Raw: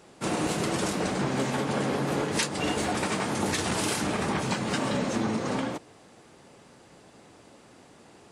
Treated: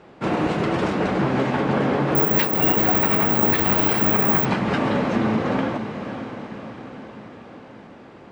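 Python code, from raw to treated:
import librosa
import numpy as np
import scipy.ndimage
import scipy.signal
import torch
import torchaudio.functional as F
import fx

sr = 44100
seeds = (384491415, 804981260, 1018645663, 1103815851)

y = scipy.signal.sosfilt(scipy.signal.butter(2, 2500.0, 'lowpass', fs=sr, output='sos'), x)
y = fx.echo_diffused(y, sr, ms=536, feedback_pct=59, wet_db=-9.5)
y = fx.resample_bad(y, sr, factor=2, down='none', up='zero_stuff', at=(2.15, 4.45))
y = y * librosa.db_to_amplitude(6.5)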